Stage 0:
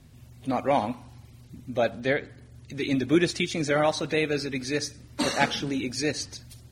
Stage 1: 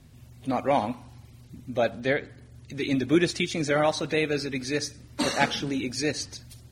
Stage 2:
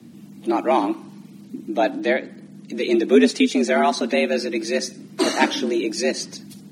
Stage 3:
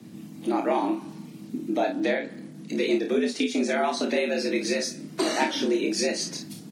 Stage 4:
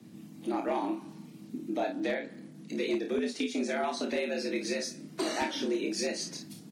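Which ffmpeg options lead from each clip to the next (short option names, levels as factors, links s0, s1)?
-af anull
-filter_complex "[0:a]equalizer=f=180:w=2.3:g=13.5,acrossover=split=120[s0][s1];[s0]acompressor=threshold=0.00447:ratio=6[s2];[s2][s1]amix=inputs=2:normalize=0,afreqshift=80,volume=1.58"
-filter_complex "[0:a]acompressor=threshold=0.0708:ratio=6,asplit=2[s0][s1];[s1]aecho=0:1:28|53:0.596|0.398[s2];[s0][s2]amix=inputs=2:normalize=0"
-af "volume=6.68,asoftclip=hard,volume=0.15,volume=0.473"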